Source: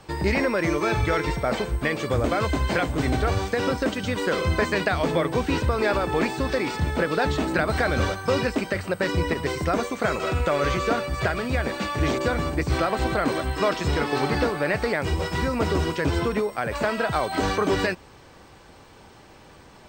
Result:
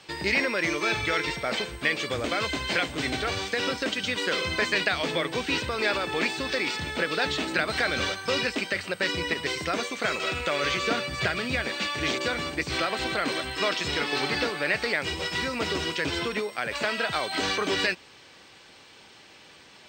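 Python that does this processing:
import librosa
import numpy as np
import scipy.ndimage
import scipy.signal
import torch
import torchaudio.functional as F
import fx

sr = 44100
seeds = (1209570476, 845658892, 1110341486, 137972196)

y = fx.peak_eq(x, sr, hz=130.0, db=6.5, octaves=2.0, at=(10.83, 11.63))
y = fx.weighting(y, sr, curve='D')
y = F.gain(torch.from_numpy(y), -5.5).numpy()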